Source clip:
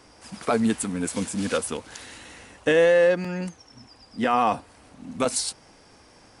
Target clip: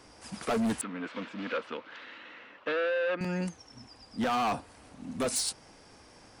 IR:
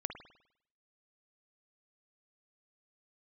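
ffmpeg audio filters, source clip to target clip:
-filter_complex "[0:a]acontrast=25,asoftclip=type=hard:threshold=-18.5dB,asettb=1/sr,asplit=3[link_01][link_02][link_03];[link_01]atrim=end=0.814[link_04];[link_02]atrim=start=0.81:end=3.21,asetpts=PTS-STARTPTS,afade=type=in:duration=0.004:curve=qsin,afade=type=out:start_time=2.396:duration=0.004:curve=qsin,highpass=340,equalizer=frequency=410:width_type=q:width=4:gain=-5,equalizer=frequency=770:width_type=q:width=4:gain=-8,equalizer=frequency=1300:width_type=q:width=4:gain=4,lowpass=frequency=3300:width=0.5412,lowpass=frequency=3300:width=1.3066[link_05];[link_03]atrim=start=3.206[link_06];[link_04][link_05]acrossfade=duration=0.004:curve1=hsin:curve2=qsin[link_07];[link_07][link_06]acrossfade=duration=0.004:curve1=qsin:curve2=hsin,volume=-7dB"

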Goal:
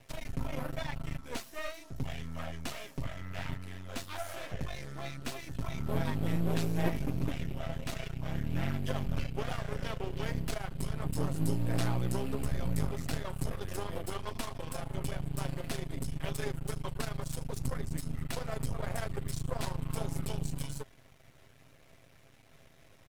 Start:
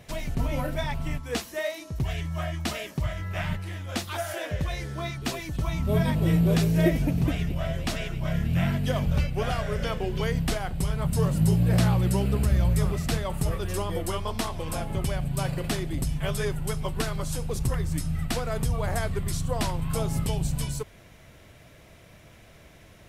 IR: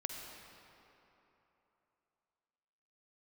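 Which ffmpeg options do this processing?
-af "aeval=exprs='max(val(0),0)':channel_layout=same,aecho=1:1:7.5:0.36,volume=-5.5dB"

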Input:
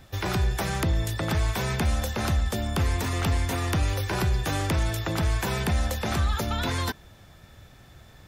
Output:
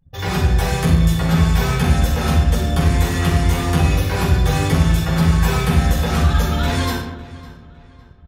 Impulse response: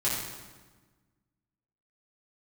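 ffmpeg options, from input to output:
-filter_complex "[1:a]atrim=start_sample=2205,asetrate=57330,aresample=44100[link_01];[0:a][link_01]afir=irnorm=-1:irlink=0,anlmdn=6.31,asplit=2[link_02][link_03];[link_03]adelay=556,lowpass=frequency=4200:poles=1,volume=-18.5dB,asplit=2[link_04][link_05];[link_05]adelay=556,lowpass=frequency=4200:poles=1,volume=0.38,asplit=2[link_06][link_07];[link_07]adelay=556,lowpass=frequency=4200:poles=1,volume=0.38[link_08];[link_02][link_04][link_06][link_08]amix=inputs=4:normalize=0"

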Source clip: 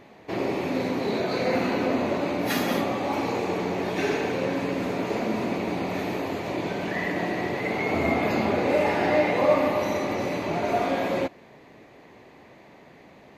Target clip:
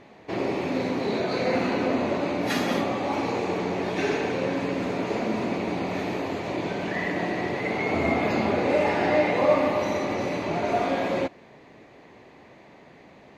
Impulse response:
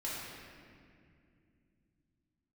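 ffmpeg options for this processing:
-af "lowpass=8600"

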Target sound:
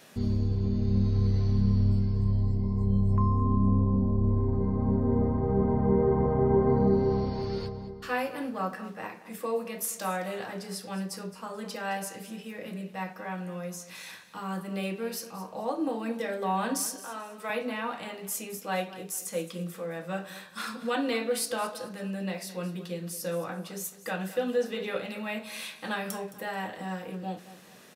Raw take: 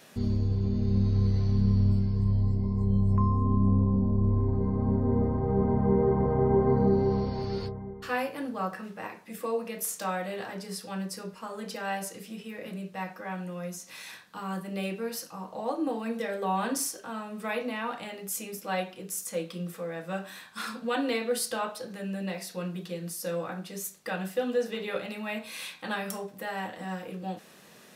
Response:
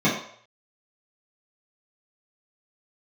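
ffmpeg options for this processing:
-filter_complex "[0:a]asettb=1/sr,asplit=3[link_01][link_02][link_03];[link_01]atrim=end=16.944[link_04];[link_02]atrim=start=16.94:end=17.5,asetpts=PTS-STARTPTS,afade=type=in:duration=0.004:curve=qsin,afade=type=out:start_time=0.556:duration=0.004:curve=qsin,highpass=390[link_05];[link_03]atrim=start=17.496[link_06];[link_04][link_05]acrossfade=duration=0.004:curve1=hsin:curve2=qsin[link_07];[link_07][link_06]acrossfade=duration=0.004:curve1=qsin:curve2=hsin,aecho=1:1:217|434|651:0.168|0.047|0.0132"

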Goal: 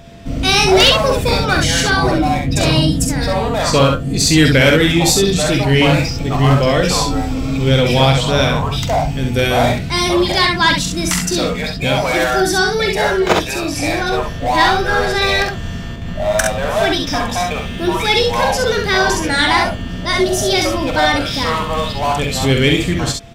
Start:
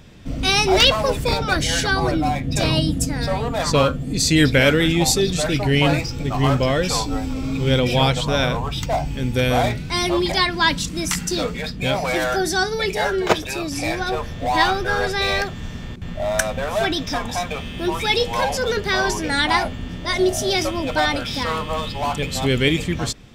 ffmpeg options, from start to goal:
ffmpeg -i in.wav -af "aecho=1:1:45|66:0.398|0.562,acontrast=37,aeval=exprs='val(0)+0.00891*sin(2*PI*680*n/s)':channel_layout=same,volume=-1dB" out.wav

